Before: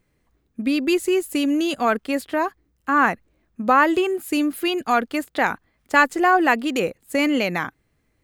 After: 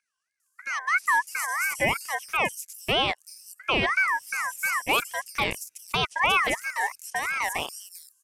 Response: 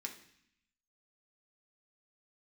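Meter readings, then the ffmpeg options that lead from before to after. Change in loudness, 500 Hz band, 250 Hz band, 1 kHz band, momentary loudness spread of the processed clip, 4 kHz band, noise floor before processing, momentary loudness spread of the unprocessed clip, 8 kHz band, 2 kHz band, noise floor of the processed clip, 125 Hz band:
-5.0 dB, -10.5 dB, -18.5 dB, -6.5 dB, 13 LU, +1.5 dB, -69 dBFS, 11 LU, +3.5 dB, -1.5 dB, -76 dBFS, 0.0 dB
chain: -filter_complex "[0:a]aexciter=amount=6.9:drive=9.9:freq=4.1k,acrossover=split=2800[a][b];[b]acompressor=threshold=-26dB:ratio=4:attack=1:release=60[c];[a][c]amix=inputs=2:normalize=0,agate=range=-8dB:threshold=-53dB:ratio=16:detection=peak,equalizer=f=5k:t=o:w=0.5:g=-14,alimiter=limit=-12dB:level=0:latency=1:release=11,aeval=exprs='val(0)+0.01*(sin(2*PI*50*n/s)+sin(2*PI*2*50*n/s)/2+sin(2*PI*3*50*n/s)/3+sin(2*PI*4*50*n/s)/4+sin(2*PI*5*50*n/s)/5)':c=same,highpass=f=330:w=0.5412,highpass=f=330:w=1.3066,equalizer=f=370:t=q:w=4:g=4,equalizer=f=700:t=q:w=4:g=4,equalizer=f=1.7k:t=q:w=4:g=-5,equalizer=f=4.4k:t=q:w=4:g=8,lowpass=f=9.9k:w=0.5412,lowpass=f=9.9k:w=1.3066,acrossover=split=5800[d][e];[e]adelay=400[f];[d][f]amix=inputs=2:normalize=0,afwtdn=0.0447,crystalizer=i=7:c=0,aeval=exprs='val(0)*sin(2*PI*1600*n/s+1600*0.2/3*sin(2*PI*3*n/s))':c=same,volume=-2.5dB"

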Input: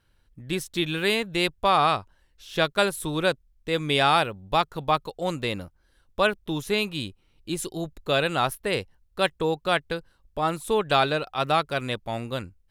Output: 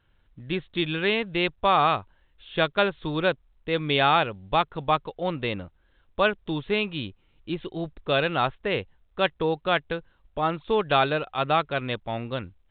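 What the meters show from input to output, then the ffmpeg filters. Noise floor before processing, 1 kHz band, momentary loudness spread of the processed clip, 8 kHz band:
-65 dBFS, 0.0 dB, 13 LU, under -40 dB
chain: -ar 8000 -c:a pcm_mulaw

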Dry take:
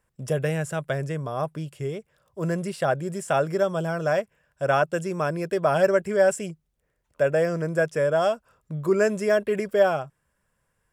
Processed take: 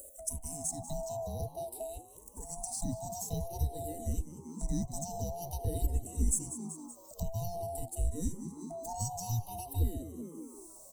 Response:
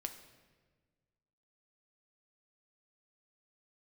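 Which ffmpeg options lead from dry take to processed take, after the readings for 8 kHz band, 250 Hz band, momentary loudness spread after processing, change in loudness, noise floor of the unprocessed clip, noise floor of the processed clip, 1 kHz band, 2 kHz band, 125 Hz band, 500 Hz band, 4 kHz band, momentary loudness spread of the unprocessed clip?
+4.0 dB, -10.5 dB, 10 LU, -12.5 dB, -74 dBFS, -54 dBFS, -14.0 dB, under -35 dB, -6.0 dB, -20.0 dB, -12.0 dB, 11 LU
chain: -filter_complex "[0:a]afftfilt=real='real(if(lt(b,1008),b+24*(1-2*mod(floor(b/24),2)),b),0)':imag='imag(if(lt(b,1008),b+24*(1-2*mod(floor(b/24),2)),b),0)':win_size=2048:overlap=0.75,acrossover=split=110|5200[a][b][c];[a]aeval=exprs='0.266*(cos(1*acos(clip(val(0)/0.266,-1,1)))-cos(1*PI/2))+0.00188*(cos(2*acos(clip(val(0)/0.266,-1,1)))-cos(2*PI/2))+0.0211*(cos(5*acos(clip(val(0)/0.266,-1,1)))-cos(5*PI/2))+0.0473*(cos(6*acos(clip(val(0)/0.266,-1,1)))-cos(6*PI/2))':c=same[d];[b]asuperpass=centerf=270:order=12:qfactor=0.5[e];[c]acrusher=bits=5:mode=log:mix=0:aa=0.000001[f];[d][e][f]amix=inputs=3:normalize=0,crystalizer=i=4:c=0,acompressor=mode=upward:threshold=-33dB:ratio=2.5,asplit=6[g][h][i][j][k][l];[h]adelay=190,afreqshift=80,volume=-15dB[m];[i]adelay=380,afreqshift=160,volume=-20dB[n];[j]adelay=570,afreqshift=240,volume=-25.1dB[o];[k]adelay=760,afreqshift=320,volume=-30.1dB[p];[l]adelay=950,afreqshift=400,volume=-35.1dB[q];[g][m][n][o][p][q]amix=inputs=6:normalize=0,acompressor=threshold=-40dB:ratio=1.5,asplit=2[r][s];[s]afreqshift=-0.5[t];[r][t]amix=inputs=2:normalize=1"

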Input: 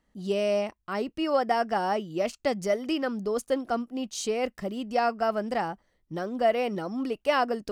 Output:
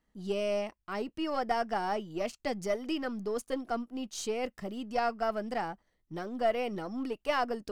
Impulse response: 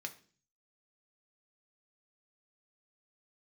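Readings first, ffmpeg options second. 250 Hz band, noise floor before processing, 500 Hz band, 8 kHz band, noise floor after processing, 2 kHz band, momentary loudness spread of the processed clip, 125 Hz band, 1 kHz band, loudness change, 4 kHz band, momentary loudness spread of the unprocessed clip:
-5.0 dB, -74 dBFS, -6.0 dB, -5.0 dB, -78 dBFS, -4.5 dB, 7 LU, -5.5 dB, -5.0 dB, -5.5 dB, -5.0 dB, 7 LU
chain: -af "aeval=exprs='if(lt(val(0),0),0.708*val(0),val(0))':c=same,bandreject=f=550:w=12,volume=-3.5dB"

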